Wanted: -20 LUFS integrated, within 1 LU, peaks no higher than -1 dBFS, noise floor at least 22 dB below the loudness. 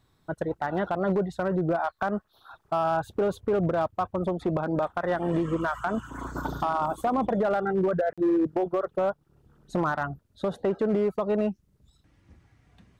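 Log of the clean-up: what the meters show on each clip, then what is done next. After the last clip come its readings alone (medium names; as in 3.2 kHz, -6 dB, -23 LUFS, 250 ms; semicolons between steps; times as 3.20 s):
clipped samples 1.2%; clipping level -19.0 dBFS; dropouts 1; longest dropout 46 ms; loudness -28.0 LUFS; peak level -19.0 dBFS; loudness target -20.0 LUFS
-> clip repair -19 dBFS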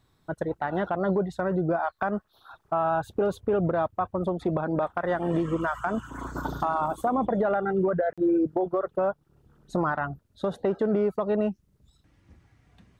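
clipped samples 0.0%; dropouts 1; longest dropout 46 ms
-> interpolate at 8.13 s, 46 ms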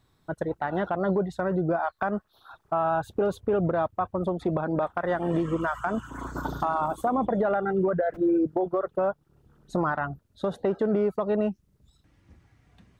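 dropouts 0; loudness -27.5 LUFS; peak level -14.0 dBFS; loudness target -20.0 LUFS
-> trim +7.5 dB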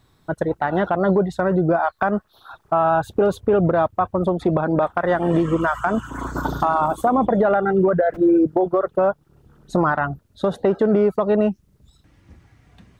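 loudness -20.0 LUFS; peak level -6.5 dBFS; noise floor -60 dBFS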